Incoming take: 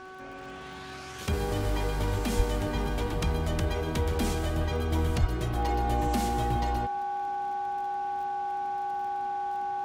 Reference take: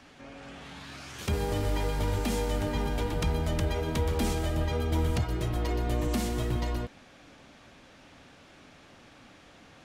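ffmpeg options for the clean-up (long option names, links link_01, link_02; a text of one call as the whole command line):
ffmpeg -i in.wav -filter_complex "[0:a]adeclick=threshold=4,bandreject=frequency=376:width_type=h:width=4,bandreject=frequency=752:width_type=h:width=4,bandreject=frequency=1128:width_type=h:width=4,bandreject=frequency=1504:width_type=h:width=4,bandreject=frequency=810:width=30,asplit=3[link_01][link_02][link_03];[link_01]afade=type=out:start_time=2.36:duration=0.02[link_04];[link_02]highpass=frequency=140:width=0.5412,highpass=frequency=140:width=1.3066,afade=type=in:start_time=2.36:duration=0.02,afade=type=out:start_time=2.48:duration=0.02[link_05];[link_03]afade=type=in:start_time=2.48:duration=0.02[link_06];[link_04][link_05][link_06]amix=inputs=3:normalize=0,asplit=3[link_07][link_08][link_09];[link_07]afade=type=out:start_time=5.2:duration=0.02[link_10];[link_08]highpass=frequency=140:width=0.5412,highpass=frequency=140:width=1.3066,afade=type=in:start_time=5.2:duration=0.02,afade=type=out:start_time=5.32:duration=0.02[link_11];[link_09]afade=type=in:start_time=5.32:duration=0.02[link_12];[link_10][link_11][link_12]amix=inputs=3:normalize=0" out.wav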